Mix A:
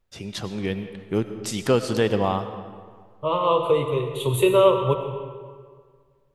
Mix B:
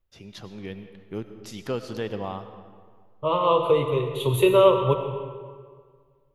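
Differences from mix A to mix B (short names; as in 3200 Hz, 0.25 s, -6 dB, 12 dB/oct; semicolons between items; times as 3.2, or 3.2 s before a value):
first voice -9.5 dB; master: add bell 8400 Hz -11 dB 0.35 oct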